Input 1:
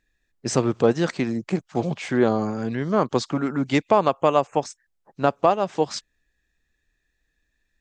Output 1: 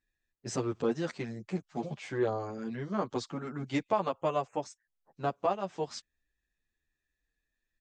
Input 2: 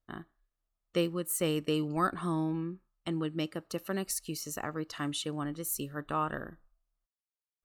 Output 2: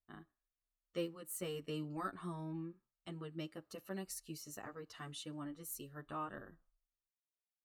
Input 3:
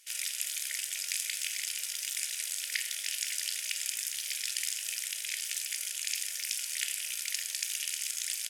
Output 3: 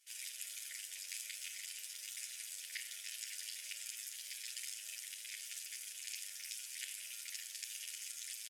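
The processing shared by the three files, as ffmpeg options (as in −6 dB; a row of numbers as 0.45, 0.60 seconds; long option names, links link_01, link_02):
-filter_complex "[0:a]asplit=2[link_01][link_02];[link_02]adelay=9,afreqshift=-1.2[link_03];[link_01][link_03]amix=inputs=2:normalize=1,volume=-8.5dB"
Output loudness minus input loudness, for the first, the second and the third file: −11.5, −11.5, −11.5 LU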